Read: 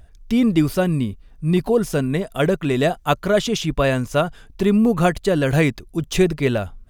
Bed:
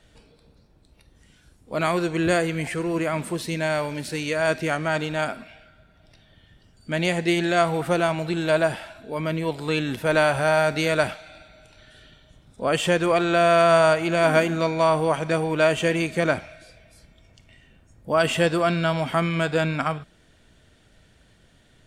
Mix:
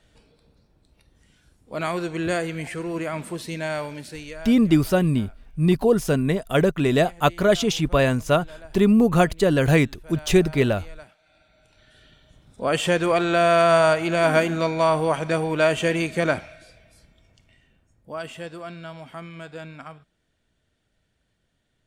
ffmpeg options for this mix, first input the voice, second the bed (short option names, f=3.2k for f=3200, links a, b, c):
-filter_complex "[0:a]adelay=4150,volume=-0.5dB[a];[1:a]volume=20dB,afade=t=out:st=3.83:d=0.72:silence=0.1,afade=t=in:st=11.16:d=1.37:silence=0.0668344,afade=t=out:st=16.34:d=1.99:silence=0.177828[b];[a][b]amix=inputs=2:normalize=0"